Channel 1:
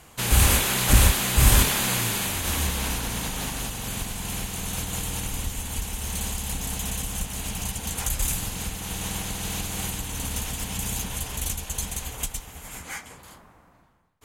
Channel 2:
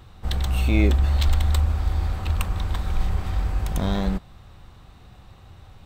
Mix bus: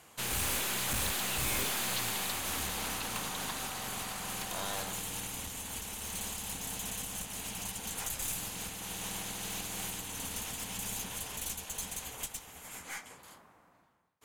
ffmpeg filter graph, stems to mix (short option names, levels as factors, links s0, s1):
-filter_complex "[0:a]volume=0.596[s0];[1:a]highpass=670,equalizer=f=4500:t=o:w=0.22:g=6.5,adelay=750,volume=0.891[s1];[s0][s1]amix=inputs=2:normalize=0,highpass=f=240:p=1,aeval=exprs='(tanh(31.6*val(0)+0.4)-tanh(0.4))/31.6':c=same"